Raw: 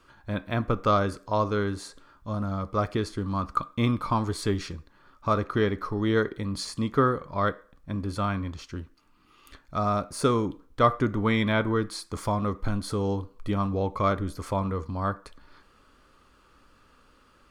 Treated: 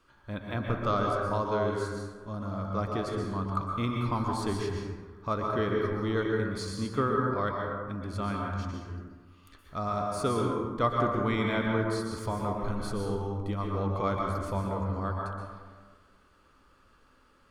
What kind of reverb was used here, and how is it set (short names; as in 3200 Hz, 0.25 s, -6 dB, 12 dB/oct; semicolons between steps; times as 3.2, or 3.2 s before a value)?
plate-style reverb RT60 1.5 s, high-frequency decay 0.4×, pre-delay 0.11 s, DRR -0.5 dB; gain -6.5 dB